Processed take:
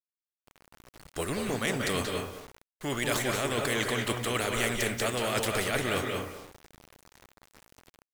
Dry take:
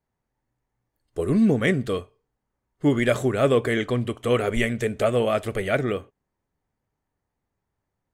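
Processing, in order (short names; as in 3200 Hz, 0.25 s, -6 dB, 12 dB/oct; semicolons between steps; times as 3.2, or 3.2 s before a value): median filter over 3 samples; reverse; compressor 12:1, threshold -33 dBFS, peak gain reduction 19 dB; reverse; harmonic-percussive split harmonic -3 dB; AGC gain up to 7 dB; speakerphone echo 0.21 s, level -21 dB; on a send at -4 dB: reverb RT60 0.30 s, pre-delay 0.176 s; on the sum: bit-crush 11-bit; vibrato 1.4 Hz 11 cents; spectral compressor 2:1; gain +2.5 dB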